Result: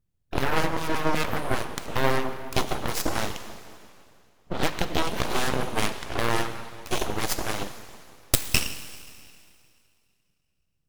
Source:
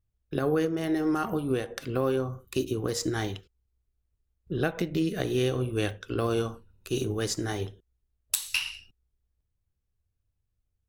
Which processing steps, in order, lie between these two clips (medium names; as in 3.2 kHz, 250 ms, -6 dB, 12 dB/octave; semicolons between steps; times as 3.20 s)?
Chebyshev shaper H 4 -7 dB, 8 -15 dB, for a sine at -8 dBFS; plate-style reverb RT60 2.4 s, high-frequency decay 0.95×, DRR 8.5 dB; full-wave rectifier; trim +2.5 dB